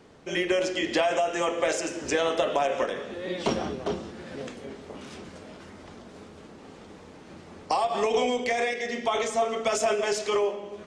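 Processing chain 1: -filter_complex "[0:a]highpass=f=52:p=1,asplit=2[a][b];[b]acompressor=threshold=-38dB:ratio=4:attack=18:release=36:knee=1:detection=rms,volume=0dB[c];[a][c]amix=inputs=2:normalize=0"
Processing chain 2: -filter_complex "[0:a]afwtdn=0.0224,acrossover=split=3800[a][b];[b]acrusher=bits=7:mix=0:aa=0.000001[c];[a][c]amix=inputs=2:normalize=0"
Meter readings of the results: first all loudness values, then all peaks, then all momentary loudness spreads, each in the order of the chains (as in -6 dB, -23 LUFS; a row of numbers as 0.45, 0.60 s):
-25.0, -27.5 LUFS; -9.5, -11.5 dBFS; 18, 15 LU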